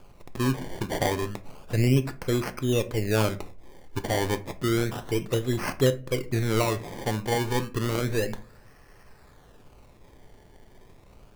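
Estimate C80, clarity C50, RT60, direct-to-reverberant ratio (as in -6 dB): 23.0 dB, 17.0 dB, 0.40 s, 9.5 dB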